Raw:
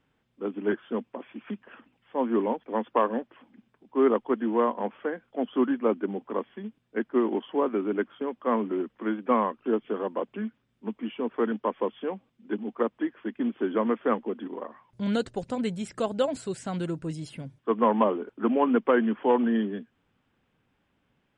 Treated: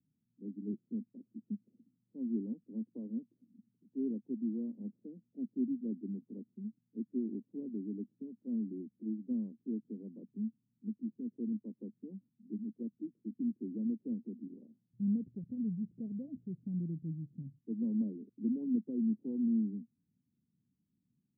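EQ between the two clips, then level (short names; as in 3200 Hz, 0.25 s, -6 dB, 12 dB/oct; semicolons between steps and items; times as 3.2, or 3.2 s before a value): HPF 170 Hz 12 dB/oct; inverse Chebyshev low-pass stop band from 1300 Hz, stop band 80 dB; 0.0 dB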